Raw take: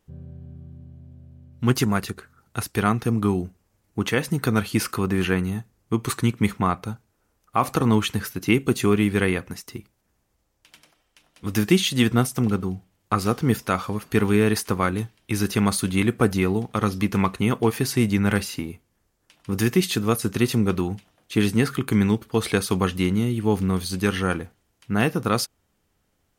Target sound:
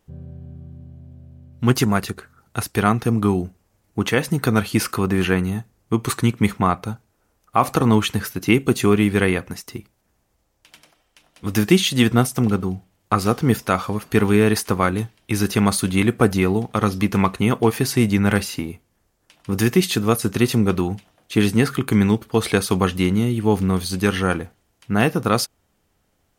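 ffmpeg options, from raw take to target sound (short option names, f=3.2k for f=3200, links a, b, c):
-af "equalizer=f=690:t=o:w=0.77:g=2.5,volume=3dB"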